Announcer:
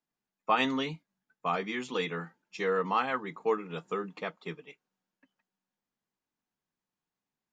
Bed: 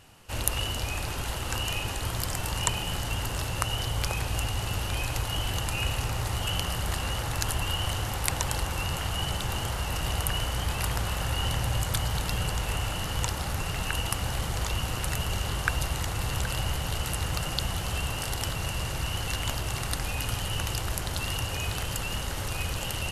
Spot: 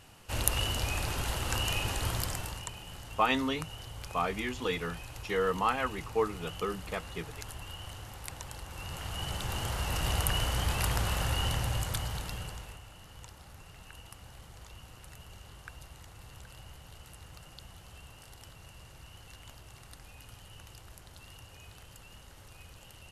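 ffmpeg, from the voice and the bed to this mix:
-filter_complex "[0:a]adelay=2700,volume=-0.5dB[a];[1:a]volume=12.5dB,afade=t=out:st=2.1:d=0.55:silence=0.211349,afade=t=in:st=8.65:d=1.46:silence=0.211349,afade=t=out:st=11.19:d=1.62:silence=0.105925[b];[a][b]amix=inputs=2:normalize=0"

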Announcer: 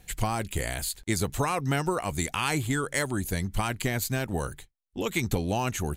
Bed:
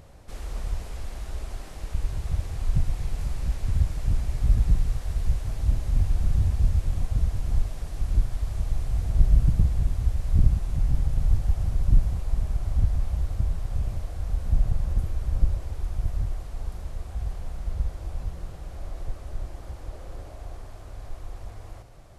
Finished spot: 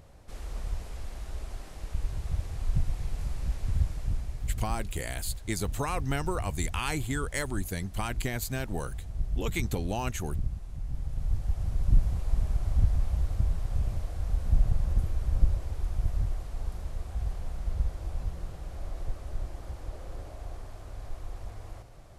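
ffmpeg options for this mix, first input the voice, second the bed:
-filter_complex "[0:a]adelay=4400,volume=-4.5dB[a];[1:a]volume=7dB,afade=t=out:st=3.81:d=0.8:silence=0.375837,afade=t=in:st=10.84:d=1.48:silence=0.281838[b];[a][b]amix=inputs=2:normalize=0"

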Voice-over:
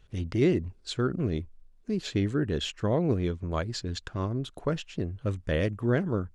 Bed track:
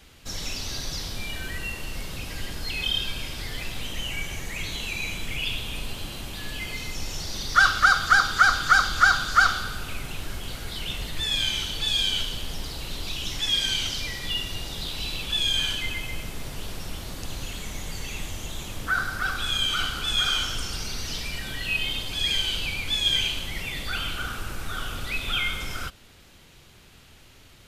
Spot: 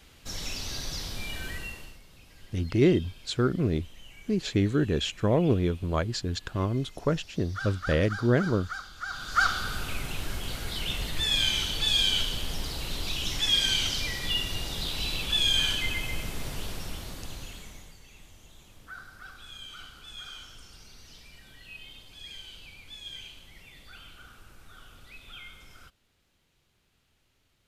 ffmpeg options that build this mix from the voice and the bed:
-filter_complex "[0:a]adelay=2400,volume=2.5dB[a];[1:a]volume=16.5dB,afade=t=out:st=1.49:d=0.5:silence=0.149624,afade=t=in:st=9.07:d=0.69:silence=0.105925,afade=t=out:st=16.51:d=1.46:silence=0.112202[b];[a][b]amix=inputs=2:normalize=0"

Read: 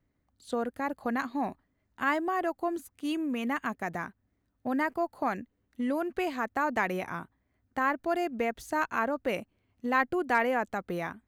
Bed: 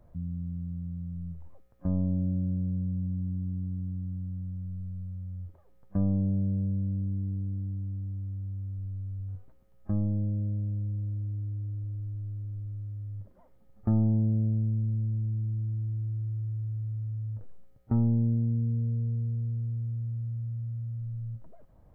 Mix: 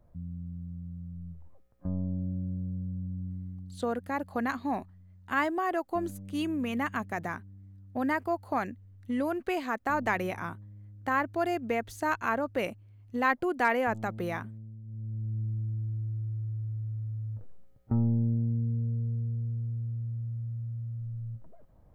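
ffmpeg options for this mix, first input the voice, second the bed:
-filter_complex "[0:a]adelay=3300,volume=0dB[a];[1:a]volume=11dB,afade=t=out:st=3.25:d=0.66:silence=0.237137,afade=t=in:st=14.84:d=0.57:silence=0.16788[b];[a][b]amix=inputs=2:normalize=0"

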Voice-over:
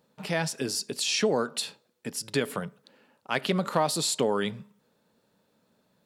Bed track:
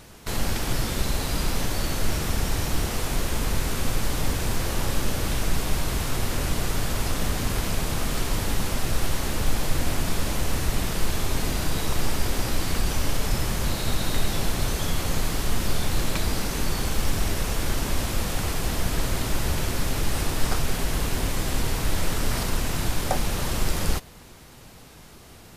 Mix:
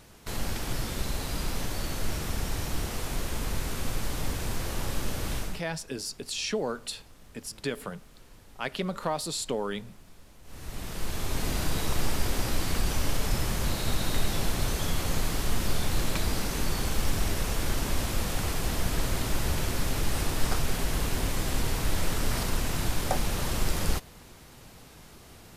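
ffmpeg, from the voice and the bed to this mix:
-filter_complex "[0:a]adelay=5300,volume=-5dB[a];[1:a]volume=19dB,afade=t=out:st=5.37:d=0.25:silence=0.0794328,afade=t=in:st=10.43:d=1.14:silence=0.0562341[b];[a][b]amix=inputs=2:normalize=0"

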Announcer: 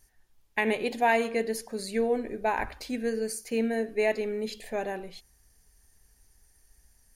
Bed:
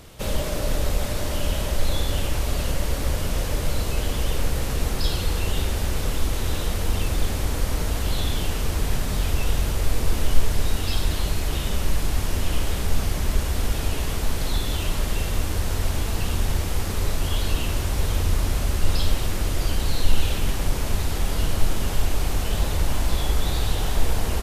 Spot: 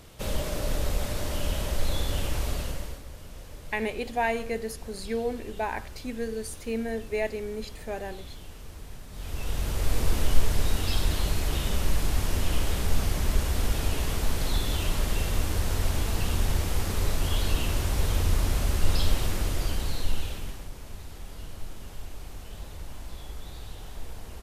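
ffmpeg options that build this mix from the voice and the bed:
-filter_complex "[0:a]adelay=3150,volume=-3dB[a];[1:a]volume=12dB,afade=t=out:st=2.45:d=0.58:silence=0.188365,afade=t=in:st=9.11:d=0.87:silence=0.149624,afade=t=out:st=19.24:d=1.45:silence=0.177828[b];[a][b]amix=inputs=2:normalize=0"

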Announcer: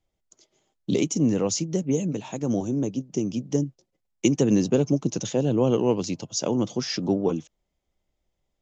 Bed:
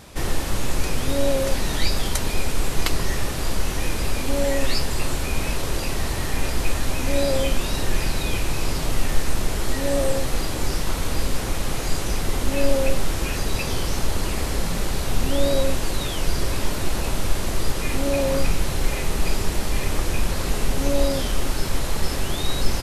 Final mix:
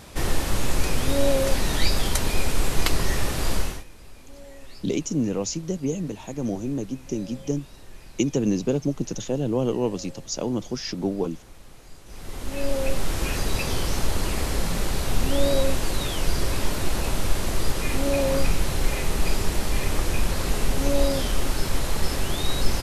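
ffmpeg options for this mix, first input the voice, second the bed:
-filter_complex "[0:a]adelay=3950,volume=-2.5dB[a];[1:a]volume=21.5dB,afade=t=out:st=3.56:d=0.28:silence=0.0749894,afade=t=in:st=12.05:d=1.22:silence=0.0841395[b];[a][b]amix=inputs=2:normalize=0"

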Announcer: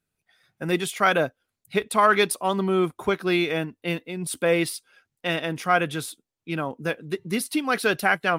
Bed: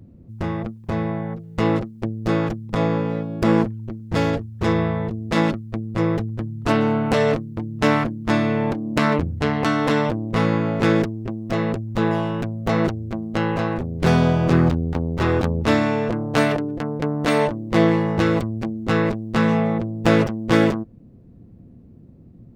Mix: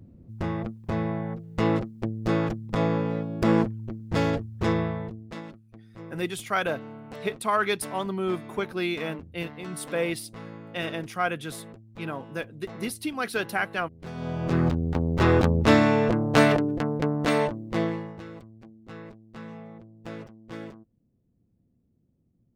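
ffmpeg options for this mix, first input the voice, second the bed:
-filter_complex "[0:a]adelay=5500,volume=-6dB[a];[1:a]volume=18dB,afade=t=out:st=4.63:d=0.78:silence=0.125893,afade=t=in:st=14.14:d=1.12:silence=0.0794328,afade=t=out:st=16.66:d=1.55:silence=0.0707946[b];[a][b]amix=inputs=2:normalize=0"

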